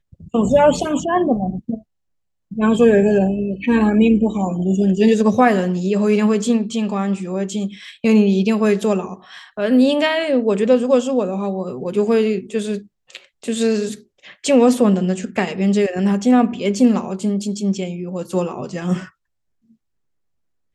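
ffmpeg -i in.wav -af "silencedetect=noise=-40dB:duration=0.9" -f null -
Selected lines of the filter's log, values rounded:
silence_start: 19.09
silence_end: 20.75 | silence_duration: 1.66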